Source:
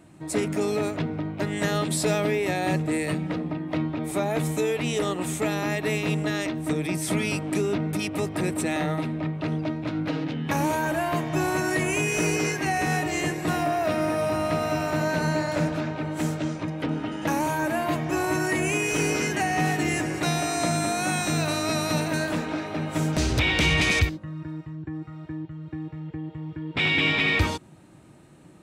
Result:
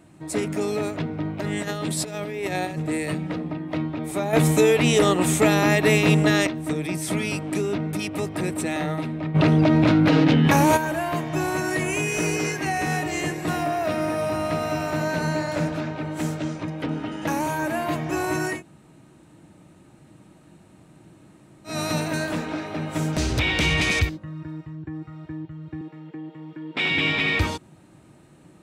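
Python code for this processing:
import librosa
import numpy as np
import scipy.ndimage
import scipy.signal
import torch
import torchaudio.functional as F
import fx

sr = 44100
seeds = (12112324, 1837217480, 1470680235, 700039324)

y = fx.over_compress(x, sr, threshold_db=-27.0, ratio=-0.5, at=(1.2, 2.78))
y = fx.env_flatten(y, sr, amount_pct=100, at=(9.34, 10.76), fade=0.02)
y = fx.highpass(y, sr, hz=190.0, slope=24, at=(25.81, 26.91))
y = fx.edit(y, sr, fx.clip_gain(start_s=4.33, length_s=2.14, db=8.0),
    fx.room_tone_fill(start_s=18.55, length_s=3.17, crossfade_s=0.16), tone=tone)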